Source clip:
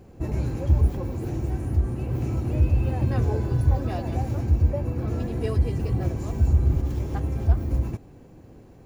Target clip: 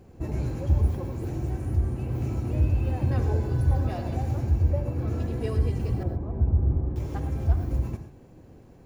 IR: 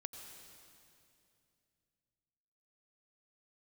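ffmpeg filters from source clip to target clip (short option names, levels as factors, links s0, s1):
-filter_complex "[0:a]asettb=1/sr,asplit=3[s0][s1][s2];[s0]atrim=end=6.034[s3];[s1]atrim=start=6.03:end=6.96,asetpts=PTS-STARTPTS,afade=t=in:d=0.004:c=qsin,afade=t=out:st=0.926:d=0.004:c=qsin,lowpass=1000[s4];[s2]atrim=start=6.956[s5];[s3][s4]acrossfade=d=0.004:c1=hsin:c2=qsin[s6];[s6][s5]acrossfade=d=0.004:c1=qsin:c2=hsin[s7];[1:a]atrim=start_sample=2205,afade=t=out:st=0.23:d=0.01,atrim=end_sample=10584,asetrate=57330,aresample=44100[s8];[s7][s8]afir=irnorm=-1:irlink=0,volume=1.58"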